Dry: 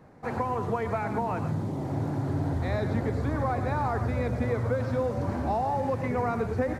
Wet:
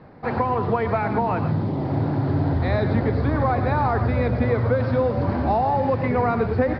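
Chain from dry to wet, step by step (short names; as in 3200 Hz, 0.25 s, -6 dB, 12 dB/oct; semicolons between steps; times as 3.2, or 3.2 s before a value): steep low-pass 5000 Hz 72 dB/oct; gain +7 dB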